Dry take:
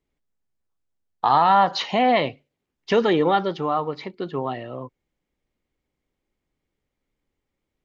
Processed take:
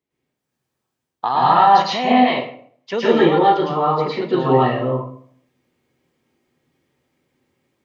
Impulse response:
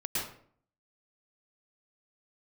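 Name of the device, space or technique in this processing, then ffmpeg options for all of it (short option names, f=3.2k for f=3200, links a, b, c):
far laptop microphone: -filter_complex "[0:a]asettb=1/sr,asplit=3[a][b][c];[a]atrim=end=2.124[d];[b]atrim=start=2.12:end=2.93,asetpts=PTS-STARTPTS,afade=t=in:d=0.004:c=qsin,afade=t=out:st=0.806:d=0.004:c=qsin,lowshelf=f=440:g=-11.5[e];[c]atrim=start=2.926[f];[d][e]acrossfade=d=0.004:c1=hsin:c2=qsin[g];[g][f]acrossfade=d=0.004:c1=qsin:c2=hsin[h];[1:a]atrim=start_sample=2205[i];[h][i]afir=irnorm=-1:irlink=0,highpass=130,dynaudnorm=f=270:g=3:m=9dB,volume=-1dB"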